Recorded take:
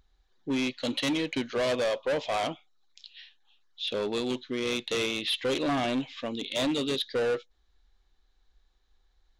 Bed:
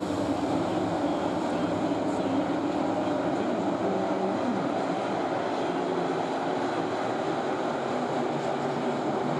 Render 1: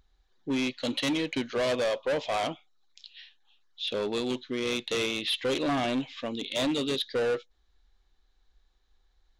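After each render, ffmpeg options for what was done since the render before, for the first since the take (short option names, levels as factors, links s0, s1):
-af anull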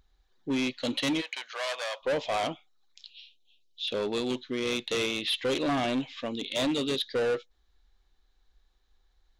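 -filter_complex "[0:a]asplit=3[s0][s1][s2];[s0]afade=t=out:st=1.2:d=0.02[s3];[s1]highpass=f=740:w=0.5412,highpass=f=740:w=1.3066,afade=t=in:st=1.2:d=0.02,afade=t=out:st=2.01:d=0.02[s4];[s2]afade=t=in:st=2.01:d=0.02[s5];[s3][s4][s5]amix=inputs=3:normalize=0,asettb=1/sr,asplit=3[s6][s7][s8];[s6]atrim=end=3.104[s9];[s7]atrim=start=3.1:end=3.88,asetpts=PTS-STARTPTS,afade=t=in:d=0.004:c=qsin,afade=t=out:st=0.776:d=0.004:c=qsin,asuperstop=centerf=1300:order=12:qfactor=0.74[s10];[s8]atrim=start=3.876[s11];[s9][s10]acrossfade=d=0.004:c1=hsin:c2=qsin[s12];[s12][s11]acrossfade=d=0.004:c1=qsin:c2=hsin"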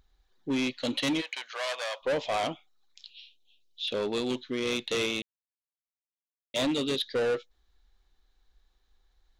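-filter_complex "[0:a]asplit=3[s0][s1][s2];[s0]atrim=end=5.22,asetpts=PTS-STARTPTS,afade=t=out:st=5.216:d=0.004:c=hsin[s3];[s1]atrim=start=5.22:end=6.54,asetpts=PTS-STARTPTS,volume=0[s4];[s2]atrim=start=6.54,asetpts=PTS-STARTPTS,afade=t=in:d=0.004:c=hsin[s5];[s3][s4][s5]concat=n=3:v=0:a=1"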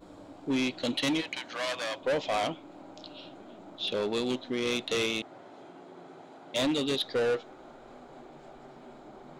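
-filter_complex "[1:a]volume=0.0891[s0];[0:a][s0]amix=inputs=2:normalize=0"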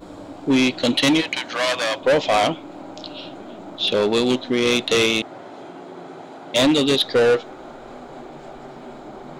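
-af "volume=3.76"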